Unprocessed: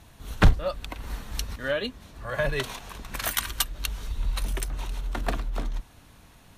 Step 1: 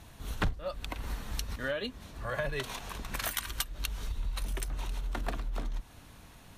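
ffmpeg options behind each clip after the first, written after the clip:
-af "acompressor=threshold=-32dB:ratio=3"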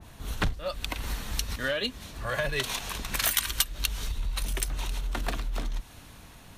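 -filter_complex "[0:a]asplit=2[a][b];[b]asoftclip=type=hard:threshold=-29.5dB,volume=-6dB[c];[a][c]amix=inputs=2:normalize=0,adynamicequalizer=threshold=0.00447:dfrequency=1900:dqfactor=0.7:tfrequency=1900:tqfactor=0.7:attack=5:release=100:ratio=0.375:range=3.5:mode=boostabove:tftype=highshelf"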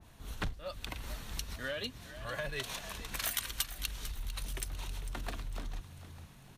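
-filter_complex "[0:a]asplit=5[a][b][c][d][e];[b]adelay=449,afreqshift=48,volume=-13dB[f];[c]adelay=898,afreqshift=96,volume=-20.5dB[g];[d]adelay=1347,afreqshift=144,volume=-28.1dB[h];[e]adelay=1796,afreqshift=192,volume=-35.6dB[i];[a][f][g][h][i]amix=inputs=5:normalize=0,volume=-9dB"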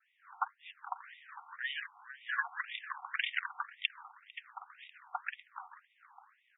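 -af "adynamicsmooth=sensitivity=6:basefreq=960,afftfilt=real='re*between(b*sr/1024,980*pow(2700/980,0.5+0.5*sin(2*PI*1.9*pts/sr))/1.41,980*pow(2700/980,0.5+0.5*sin(2*PI*1.9*pts/sr))*1.41)':imag='im*between(b*sr/1024,980*pow(2700/980,0.5+0.5*sin(2*PI*1.9*pts/sr))/1.41,980*pow(2700/980,0.5+0.5*sin(2*PI*1.9*pts/sr))*1.41)':win_size=1024:overlap=0.75,volume=11.5dB"

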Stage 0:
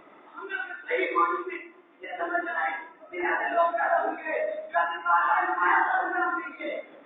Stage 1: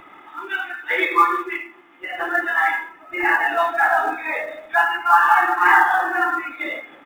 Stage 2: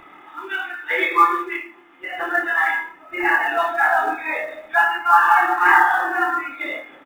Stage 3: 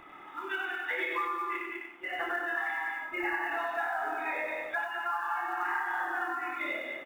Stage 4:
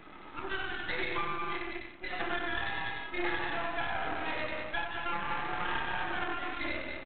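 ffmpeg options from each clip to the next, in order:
-filter_complex "[0:a]equalizer=f=460:t=o:w=0.98:g=-13.5,aecho=1:1:2.4:0.43,asplit=2[a][b];[b]acrusher=bits=4:mode=log:mix=0:aa=0.000001,volume=-8dB[c];[a][c]amix=inputs=2:normalize=0,volume=7dB"
-filter_complex "[0:a]asplit=2[a][b];[b]adelay=26,volume=-6dB[c];[a][c]amix=inputs=2:normalize=0,volume=-1dB"
-filter_complex "[0:a]asplit=2[a][b];[b]aecho=0:1:201:0.422[c];[a][c]amix=inputs=2:normalize=0,acompressor=threshold=-24dB:ratio=10,asplit=2[d][e];[e]aecho=0:1:94:0.596[f];[d][f]amix=inputs=2:normalize=0,volume=-6.5dB"
-af "equalizer=f=210:t=o:w=1.1:g=13.5,aresample=8000,aeval=exprs='max(val(0),0)':c=same,aresample=44100,volume=2dB"

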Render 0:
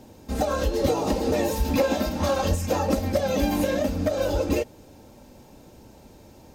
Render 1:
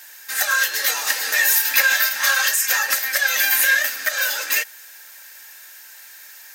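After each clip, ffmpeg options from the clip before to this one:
-af "highpass=f=1.7k:t=q:w=7.8,aemphasis=mode=production:type=75fm,volume=5.5dB"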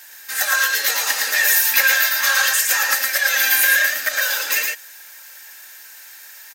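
-af "aecho=1:1:113:0.668"

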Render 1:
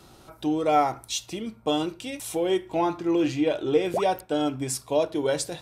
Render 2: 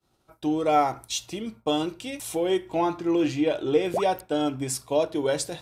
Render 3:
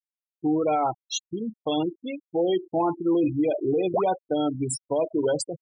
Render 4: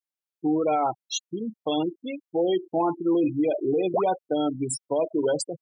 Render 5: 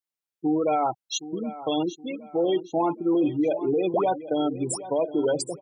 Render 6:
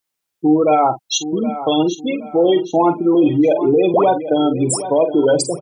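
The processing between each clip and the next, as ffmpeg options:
-af "agate=range=-33dB:threshold=-39dB:ratio=3:detection=peak"
-af "afftfilt=real='re*gte(hypot(re,im),0.0708)':imag='im*gte(hypot(re,im),0.0708)':win_size=1024:overlap=0.75,alimiter=limit=-19.5dB:level=0:latency=1:release=12,volume=3dB"
-af "highpass=140"
-af "aecho=1:1:769|1538|2307:0.178|0.064|0.023"
-filter_complex "[0:a]asplit=2[a][b];[b]alimiter=level_in=1.5dB:limit=-24dB:level=0:latency=1:release=38,volume=-1.5dB,volume=-2.5dB[c];[a][c]amix=inputs=2:normalize=0,asplit=2[d][e];[e]adelay=46,volume=-11.5dB[f];[d][f]amix=inputs=2:normalize=0,volume=7.5dB"

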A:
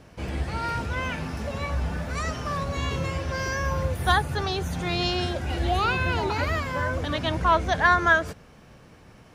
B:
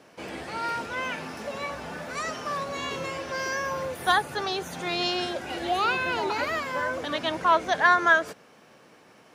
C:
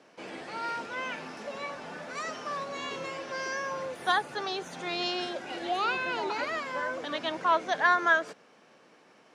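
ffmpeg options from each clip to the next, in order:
-af "highpass=290"
-af "highpass=180,lowpass=7.8k,volume=-4dB"

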